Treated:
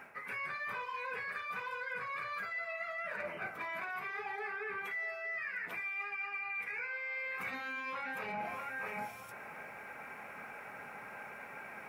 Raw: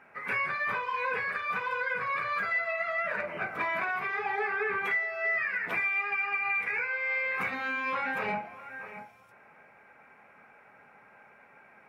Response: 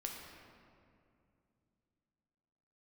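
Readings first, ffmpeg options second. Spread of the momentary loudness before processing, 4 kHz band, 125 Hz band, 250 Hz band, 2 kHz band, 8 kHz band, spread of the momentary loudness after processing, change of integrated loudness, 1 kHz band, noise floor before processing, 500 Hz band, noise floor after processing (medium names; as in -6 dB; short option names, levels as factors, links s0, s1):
5 LU, -6.0 dB, -7.0 dB, -7.5 dB, -8.5 dB, no reading, 9 LU, -10.0 dB, -8.5 dB, -58 dBFS, -8.5 dB, -49 dBFS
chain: -af "highshelf=f=5600:g=12,areverse,acompressor=threshold=0.00562:ratio=20,areverse,volume=2.51"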